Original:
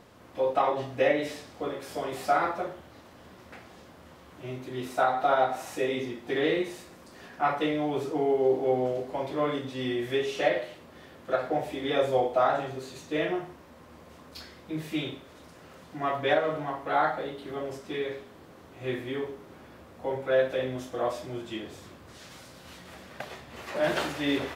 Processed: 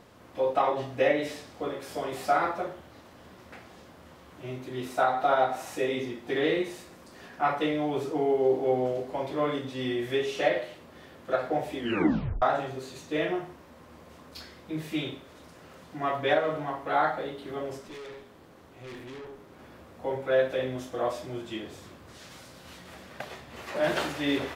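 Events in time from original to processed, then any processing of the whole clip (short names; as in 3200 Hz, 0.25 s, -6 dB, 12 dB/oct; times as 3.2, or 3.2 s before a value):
11.78 tape stop 0.64 s
17.88–19.59 tube stage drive 40 dB, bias 0.55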